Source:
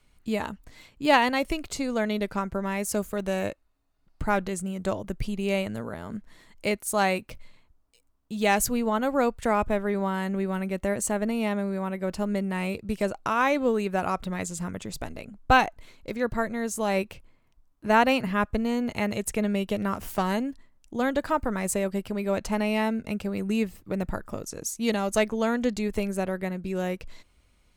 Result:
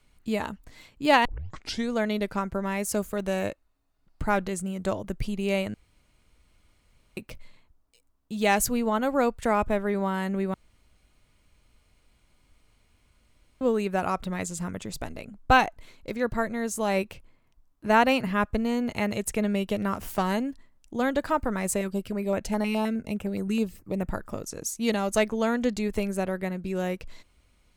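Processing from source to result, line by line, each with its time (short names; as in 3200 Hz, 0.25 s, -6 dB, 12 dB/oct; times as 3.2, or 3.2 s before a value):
1.25 tape start 0.66 s
5.74–7.17 room tone
10.54–13.61 room tone
21.81–24.08 stepped notch 9.6 Hz 650–4500 Hz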